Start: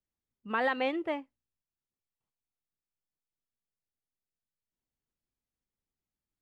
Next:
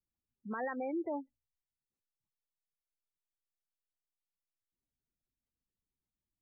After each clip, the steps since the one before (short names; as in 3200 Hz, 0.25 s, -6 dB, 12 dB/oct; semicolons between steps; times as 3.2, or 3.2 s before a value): treble ducked by the level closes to 2000 Hz, closed at -28.5 dBFS; spectral gate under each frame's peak -15 dB strong; limiter -30.5 dBFS, peak gain reduction 11 dB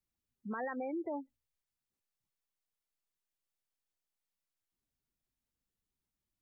compressor 3:1, threshold -38 dBFS, peak gain reduction 4.5 dB; gain +2 dB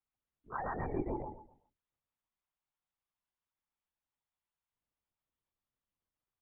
rippled Chebyshev high-pass 250 Hz, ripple 9 dB; on a send: feedback echo 0.125 s, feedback 27%, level -4.5 dB; on the sum: LPC vocoder at 8 kHz whisper; gain +4.5 dB